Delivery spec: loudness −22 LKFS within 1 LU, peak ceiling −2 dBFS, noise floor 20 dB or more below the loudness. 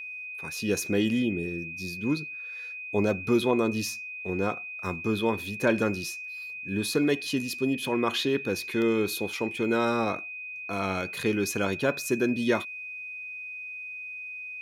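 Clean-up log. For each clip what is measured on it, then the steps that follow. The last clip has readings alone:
interfering tone 2,500 Hz; level of the tone −36 dBFS; integrated loudness −28.5 LKFS; sample peak −11.5 dBFS; target loudness −22.0 LKFS
→ notch filter 2,500 Hz, Q 30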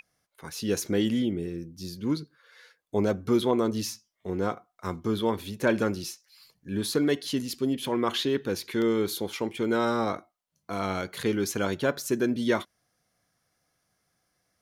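interfering tone none found; integrated loudness −28.5 LKFS; sample peak −11.5 dBFS; target loudness −22.0 LKFS
→ level +6.5 dB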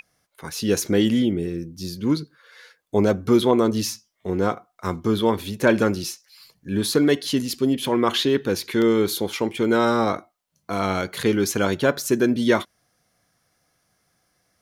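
integrated loudness −22.0 LKFS; sample peak −5.0 dBFS; background noise floor −70 dBFS

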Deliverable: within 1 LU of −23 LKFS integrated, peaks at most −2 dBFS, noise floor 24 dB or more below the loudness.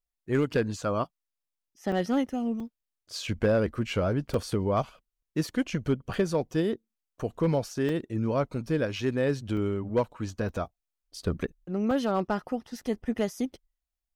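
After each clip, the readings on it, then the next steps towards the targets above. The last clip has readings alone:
share of clipped samples 0.3%; peaks flattened at −17.0 dBFS; number of dropouts 8; longest dropout 2.8 ms; integrated loudness −29.5 LKFS; sample peak −17.0 dBFS; target loudness −23.0 LKFS
→ clipped peaks rebuilt −17 dBFS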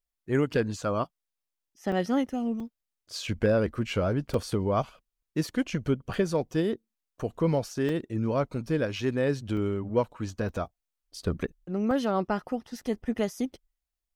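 share of clipped samples 0.0%; number of dropouts 8; longest dropout 2.8 ms
→ repair the gap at 0:01.92/0:02.60/0:04.34/0:06.14/0:07.89/0:09.57/0:10.49/0:11.91, 2.8 ms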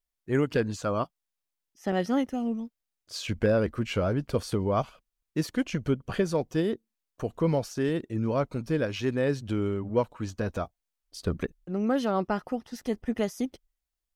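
number of dropouts 0; integrated loudness −29.5 LKFS; sample peak −12.0 dBFS; target loudness −23.0 LKFS
→ level +6.5 dB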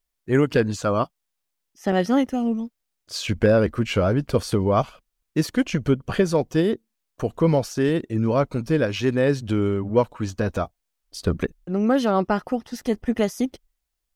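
integrated loudness −23.0 LKFS; sample peak −5.5 dBFS; background noise floor −79 dBFS

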